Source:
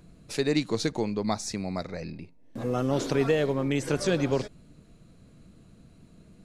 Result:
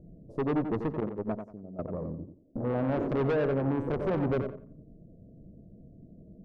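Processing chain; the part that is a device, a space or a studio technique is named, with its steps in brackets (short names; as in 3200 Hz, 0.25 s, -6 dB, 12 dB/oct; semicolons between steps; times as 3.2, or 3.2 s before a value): elliptic low-pass 650 Hz, stop band 40 dB; 1–1.79 gate -27 dBFS, range -15 dB; rockabilly slapback (tube stage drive 30 dB, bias 0.55; tape echo 90 ms, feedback 28%, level -6 dB, low-pass 2300 Hz); gain +5 dB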